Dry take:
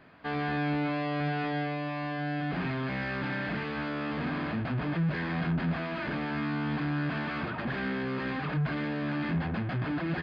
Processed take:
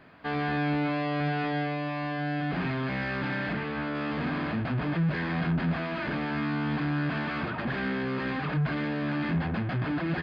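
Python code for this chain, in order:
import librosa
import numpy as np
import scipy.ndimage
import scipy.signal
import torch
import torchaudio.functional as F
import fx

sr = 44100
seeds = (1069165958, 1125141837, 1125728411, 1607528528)

y = fx.lowpass(x, sr, hz=3300.0, slope=6, at=(3.53, 3.95))
y = F.gain(torch.from_numpy(y), 2.0).numpy()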